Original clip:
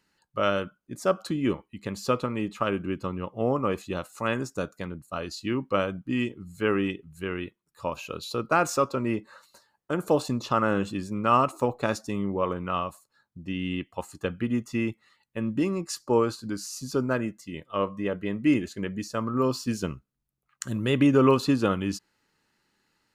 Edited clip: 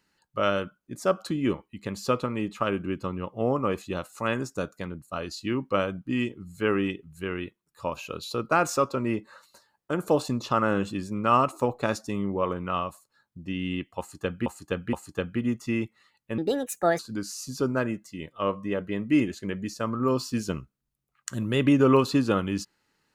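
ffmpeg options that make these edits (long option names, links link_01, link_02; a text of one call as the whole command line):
ffmpeg -i in.wav -filter_complex "[0:a]asplit=5[link_01][link_02][link_03][link_04][link_05];[link_01]atrim=end=14.462[link_06];[link_02]atrim=start=13.988:end=14.462[link_07];[link_03]atrim=start=13.988:end=15.444[link_08];[link_04]atrim=start=15.44:end=16.33,asetpts=PTS-STARTPTS,asetrate=64386,aresample=44100[link_09];[link_05]atrim=start=16.326[link_10];[link_06][link_07]acrossfade=duration=0.004:curve1=hsin:curve2=hsin[link_11];[link_11][link_08]acrossfade=duration=0.004:curve1=hsin:curve2=hsin[link_12];[link_12][link_09]acrossfade=duration=0.004:curve1=hsin:curve2=hsin[link_13];[link_13][link_10]acrossfade=duration=0.004:curve1=hsin:curve2=hsin" out.wav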